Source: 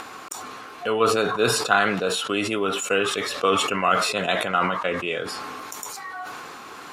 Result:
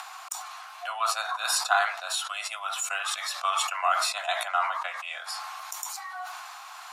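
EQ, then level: steep high-pass 680 Hz 72 dB/octave; dynamic bell 2.9 kHz, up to -6 dB, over -43 dBFS, Q 2.9; peaking EQ 1.7 kHz -4.5 dB 1.7 oct; 0.0 dB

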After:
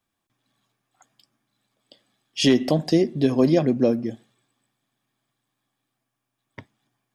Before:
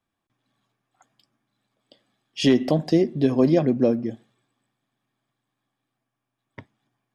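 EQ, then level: treble shelf 3.6 kHz +7.5 dB; 0.0 dB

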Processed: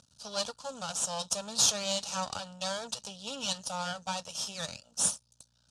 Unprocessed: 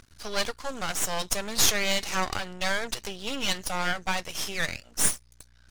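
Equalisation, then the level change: dynamic bell 1.3 kHz, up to +4 dB, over -41 dBFS, Q 0.83; cabinet simulation 160–9100 Hz, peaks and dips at 740 Hz -7 dB, 1.1 kHz -10 dB, 1.6 kHz -9 dB; static phaser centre 860 Hz, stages 4; 0.0 dB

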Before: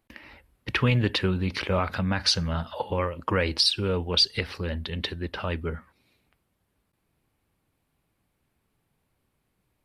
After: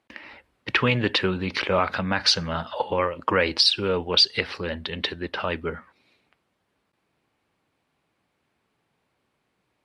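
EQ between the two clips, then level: high-pass 130 Hz 6 dB/octave; distance through air 72 m; bass shelf 230 Hz -8.5 dB; +6.0 dB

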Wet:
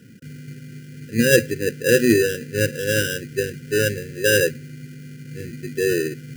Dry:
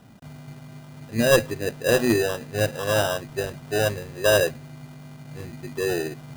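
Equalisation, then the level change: high-pass 100 Hz; brick-wall FIR band-stop 540–1400 Hz; peaking EQ 3.7 kHz -9.5 dB 0.24 oct; +5.0 dB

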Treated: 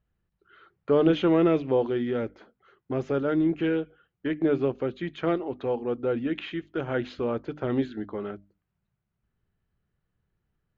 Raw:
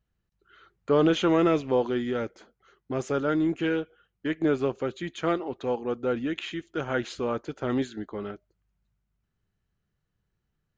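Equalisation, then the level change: distance through air 260 m; dynamic bell 1.2 kHz, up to -5 dB, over -39 dBFS, Q 0.95; hum notches 50/100/150/200/250/300 Hz; +2.5 dB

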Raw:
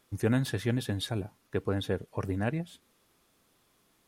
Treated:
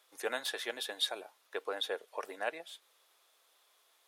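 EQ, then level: high-pass 520 Hz 24 dB/octave; peaking EQ 3.6 kHz +5 dB 0.4 oct; 0.0 dB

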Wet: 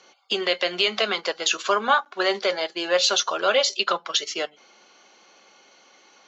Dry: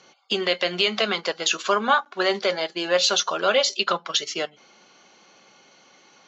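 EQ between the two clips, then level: high-pass 280 Hz 12 dB/octave; 0.0 dB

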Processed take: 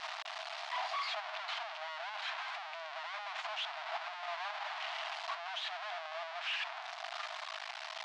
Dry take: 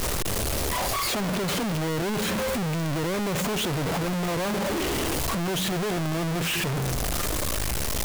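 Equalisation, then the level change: brick-wall FIR high-pass 620 Hz; low-pass 4.2 kHz 24 dB/octave; -8.0 dB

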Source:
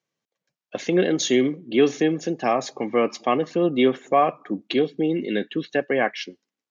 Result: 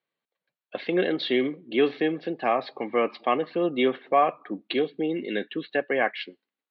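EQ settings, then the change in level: elliptic low-pass 4.3 kHz, stop band 40 dB; distance through air 73 m; bass shelf 220 Hz -12 dB; 0.0 dB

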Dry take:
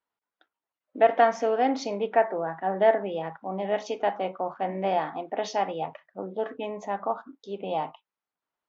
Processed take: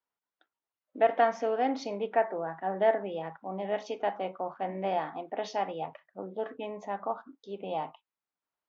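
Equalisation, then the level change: low-pass 6.1 kHz 12 dB/octave; -4.5 dB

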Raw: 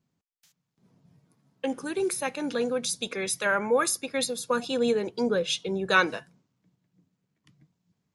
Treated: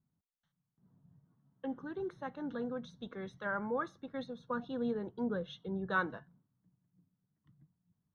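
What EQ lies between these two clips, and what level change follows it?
boxcar filter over 18 samples; distance through air 220 m; peaking EQ 470 Hz -11 dB 1.9 oct; -1.0 dB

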